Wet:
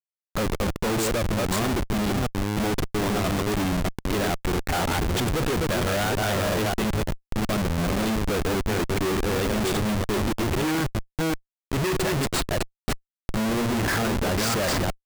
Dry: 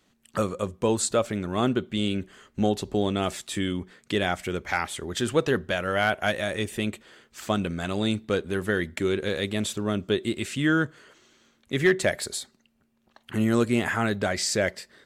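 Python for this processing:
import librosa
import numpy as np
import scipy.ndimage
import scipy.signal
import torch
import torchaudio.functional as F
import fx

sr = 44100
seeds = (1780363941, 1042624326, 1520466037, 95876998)

y = fx.reverse_delay(x, sr, ms=324, wet_db=-4.0)
y = fx.schmitt(y, sr, flips_db=-29.0)
y = F.gain(torch.from_numpy(y), 2.0).numpy()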